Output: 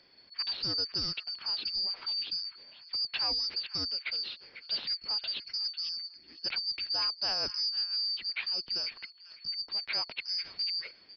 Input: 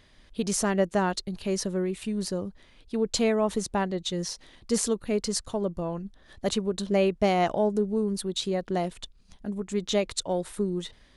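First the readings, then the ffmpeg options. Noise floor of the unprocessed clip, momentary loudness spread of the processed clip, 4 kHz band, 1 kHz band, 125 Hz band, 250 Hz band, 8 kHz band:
−57 dBFS, 8 LU, +7.5 dB, −15.0 dB, −19.5 dB, −25.5 dB, −20.5 dB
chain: -filter_complex "[0:a]afftfilt=real='real(if(lt(b,272),68*(eq(floor(b/68),0)*1+eq(floor(b/68),1)*2+eq(floor(b/68),2)*3+eq(floor(b/68),3)*0)+mod(b,68),b),0)':imag='imag(if(lt(b,272),68*(eq(floor(b/68),0)*1+eq(floor(b/68),1)*2+eq(floor(b/68),2)*3+eq(floor(b/68),3)*0)+mod(b,68),b),0)':win_size=2048:overlap=0.75,acrossover=split=230|1200|3500[link_01][link_02][link_03][link_04];[link_03]aecho=1:1:498|996:0.355|0.0532[link_05];[link_04]volume=27dB,asoftclip=hard,volume=-27dB[link_06];[link_01][link_02][link_05][link_06]amix=inputs=4:normalize=0,aresample=11025,aresample=44100,volume=-4dB"

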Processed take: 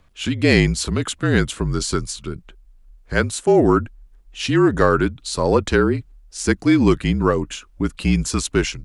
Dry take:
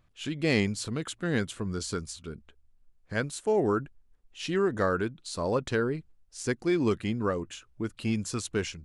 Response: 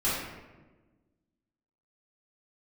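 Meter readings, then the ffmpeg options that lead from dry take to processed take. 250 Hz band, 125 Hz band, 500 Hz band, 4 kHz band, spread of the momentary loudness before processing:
+11.5 dB, +12.5 dB, +9.5 dB, +11.0 dB, 12 LU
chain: -af "acontrast=88,afreqshift=-42,volume=4dB"

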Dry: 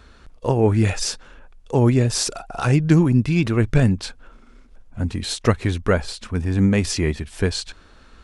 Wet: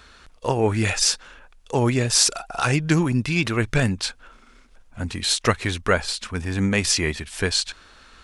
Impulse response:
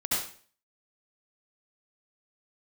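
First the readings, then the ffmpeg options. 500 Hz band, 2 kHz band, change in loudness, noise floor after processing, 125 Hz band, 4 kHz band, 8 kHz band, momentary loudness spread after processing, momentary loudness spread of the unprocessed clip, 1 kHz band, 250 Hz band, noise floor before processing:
−2.5 dB, +4.5 dB, −1.5 dB, −52 dBFS, −5.5 dB, +5.5 dB, +6.0 dB, 9 LU, 11 LU, +2.0 dB, −4.5 dB, −49 dBFS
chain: -af "tiltshelf=frequency=720:gain=-6"

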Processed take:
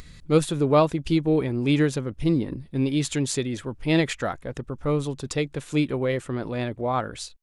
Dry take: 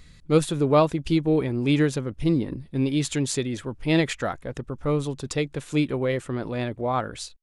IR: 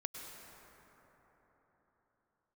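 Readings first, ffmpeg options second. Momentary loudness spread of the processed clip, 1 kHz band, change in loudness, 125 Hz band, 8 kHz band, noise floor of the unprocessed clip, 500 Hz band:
9 LU, 0.0 dB, 0.0 dB, 0.0 dB, 0.0 dB, −50 dBFS, 0.0 dB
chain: -af "acompressor=mode=upward:threshold=-38dB:ratio=2.5"

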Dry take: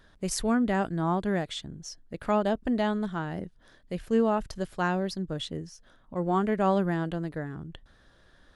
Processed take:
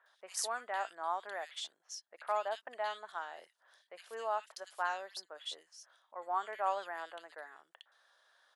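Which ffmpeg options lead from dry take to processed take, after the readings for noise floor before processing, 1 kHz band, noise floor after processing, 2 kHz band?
−60 dBFS, −5.0 dB, −79 dBFS, −6.0 dB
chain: -filter_complex "[0:a]highpass=frequency=690:width=0.5412,highpass=frequency=690:width=1.3066,acrossover=split=2200[link_01][link_02];[link_02]adelay=60[link_03];[link_01][link_03]amix=inputs=2:normalize=0,volume=-4dB"

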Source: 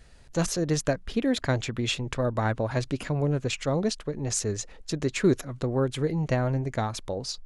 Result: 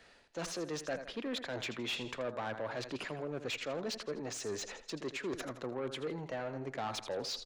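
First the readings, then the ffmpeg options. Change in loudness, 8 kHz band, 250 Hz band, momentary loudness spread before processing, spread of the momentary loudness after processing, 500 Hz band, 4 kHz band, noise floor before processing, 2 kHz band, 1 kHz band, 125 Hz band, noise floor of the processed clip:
−11.5 dB, −12.0 dB, −14.0 dB, 6 LU, 3 LU, −10.0 dB, −6.0 dB, −49 dBFS, −7.0 dB, −8.5 dB, −20.5 dB, −61 dBFS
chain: -filter_complex "[0:a]areverse,acompressor=threshold=-35dB:ratio=8,areverse,lowshelf=frequency=280:gain=-9,aecho=1:1:82|164|246|328:0.2|0.0758|0.0288|0.0109,acrossover=split=110[link_01][link_02];[link_02]asoftclip=type=tanh:threshold=-39.5dB[link_03];[link_01][link_03]amix=inputs=2:normalize=0,agate=range=-6dB:threshold=-56dB:ratio=16:detection=peak,acrossover=split=190 5100:gain=0.2 1 0.251[link_04][link_05][link_06];[link_04][link_05][link_06]amix=inputs=3:normalize=0,volume=8dB"

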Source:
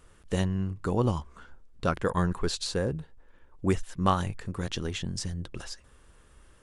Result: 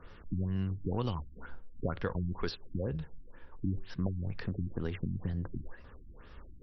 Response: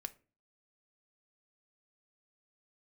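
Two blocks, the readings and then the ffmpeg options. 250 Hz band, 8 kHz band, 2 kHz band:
−6.0 dB, below −25 dB, −8.5 dB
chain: -filter_complex "[0:a]acrossover=split=110|1800[link_01][link_02][link_03];[link_01]acompressor=threshold=-43dB:ratio=4[link_04];[link_02]acompressor=threshold=-40dB:ratio=4[link_05];[link_03]acompressor=threshold=-49dB:ratio=4[link_06];[link_04][link_05][link_06]amix=inputs=3:normalize=0,asplit=2[link_07][link_08];[1:a]atrim=start_sample=2205,asetrate=29988,aresample=44100[link_09];[link_08][link_09]afir=irnorm=-1:irlink=0,volume=-6dB[link_10];[link_07][link_10]amix=inputs=2:normalize=0,afftfilt=real='re*lt(b*sr/1024,310*pow(5900/310,0.5+0.5*sin(2*PI*2.1*pts/sr)))':imag='im*lt(b*sr/1024,310*pow(5900/310,0.5+0.5*sin(2*PI*2.1*pts/sr)))':win_size=1024:overlap=0.75,volume=2.5dB"

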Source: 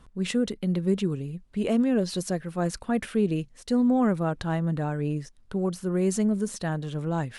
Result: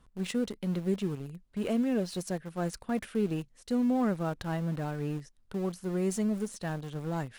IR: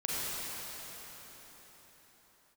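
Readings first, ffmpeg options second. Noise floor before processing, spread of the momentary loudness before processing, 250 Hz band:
−54 dBFS, 8 LU, −5.5 dB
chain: -filter_complex "[0:a]highshelf=frequency=9000:gain=2.5,asplit=2[link_01][link_02];[link_02]aeval=exprs='val(0)*gte(abs(val(0)),0.0376)':channel_layout=same,volume=-7dB[link_03];[link_01][link_03]amix=inputs=2:normalize=0,volume=-8.5dB"

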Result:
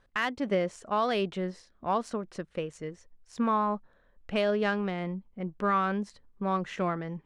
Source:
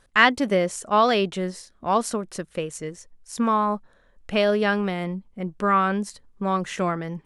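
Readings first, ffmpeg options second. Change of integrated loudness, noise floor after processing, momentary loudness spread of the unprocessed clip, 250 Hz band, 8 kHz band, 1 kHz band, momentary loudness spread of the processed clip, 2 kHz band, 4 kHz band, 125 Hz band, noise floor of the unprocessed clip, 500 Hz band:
−7.0 dB, −65 dBFS, 13 LU, −6.0 dB, −16.0 dB, −7.5 dB, 11 LU, −10.5 dB, −10.5 dB, −5.5 dB, −60 dBFS, −6.5 dB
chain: -af "adynamicsmooth=sensitivity=1:basefreq=4300,alimiter=limit=-12.5dB:level=0:latency=1:release=305,volume=-5dB"

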